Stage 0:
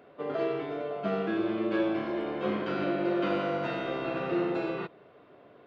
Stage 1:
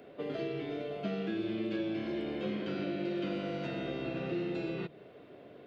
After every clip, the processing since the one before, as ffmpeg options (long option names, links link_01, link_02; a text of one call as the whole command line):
ffmpeg -i in.wav -filter_complex "[0:a]equalizer=frequency=1100:width=1.2:gain=-10.5,acrossover=split=240|2000[link_01][link_02][link_03];[link_01]acompressor=threshold=-43dB:ratio=4[link_04];[link_02]acompressor=threshold=-44dB:ratio=4[link_05];[link_03]acompressor=threshold=-54dB:ratio=4[link_06];[link_04][link_05][link_06]amix=inputs=3:normalize=0,bandreject=frequency=50:width_type=h:width=6,bandreject=frequency=100:width_type=h:width=6,bandreject=frequency=150:width_type=h:width=6,volume=5dB" out.wav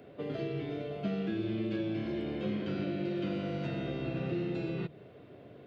ffmpeg -i in.wav -af "equalizer=frequency=100:width=0.85:gain=11,volume=-1.5dB" out.wav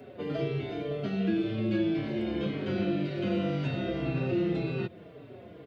ffmpeg -i in.wav -filter_complex "[0:a]asplit=2[link_01][link_02];[link_02]adelay=4.8,afreqshift=-1.9[link_03];[link_01][link_03]amix=inputs=2:normalize=1,volume=7.5dB" out.wav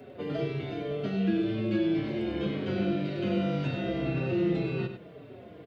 ffmpeg -i in.wav -af "aecho=1:1:98:0.355" out.wav